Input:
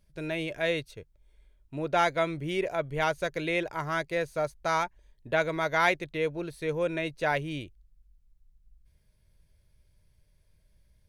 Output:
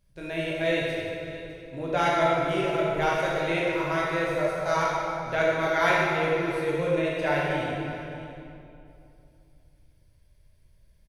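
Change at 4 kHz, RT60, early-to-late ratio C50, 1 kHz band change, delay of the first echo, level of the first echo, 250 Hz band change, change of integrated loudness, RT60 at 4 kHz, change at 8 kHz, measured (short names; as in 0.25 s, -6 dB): +3.0 dB, 2.7 s, -2.5 dB, +4.0 dB, 0.606 s, -16.0 dB, +4.5 dB, +3.5 dB, 2.2 s, +2.5 dB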